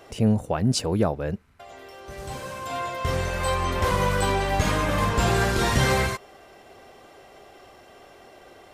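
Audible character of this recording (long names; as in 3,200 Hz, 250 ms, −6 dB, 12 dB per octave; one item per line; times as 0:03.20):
background noise floor −50 dBFS
spectral slope −5.0 dB per octave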